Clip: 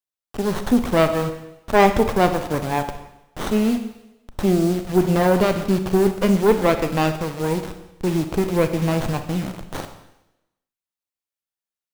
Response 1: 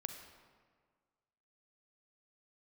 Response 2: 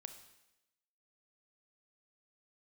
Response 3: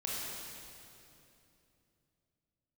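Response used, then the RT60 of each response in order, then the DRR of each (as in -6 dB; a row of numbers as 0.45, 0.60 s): 2; 1.7, 0.95, 2.9 s; 6.0, 8.0, -6.0 dB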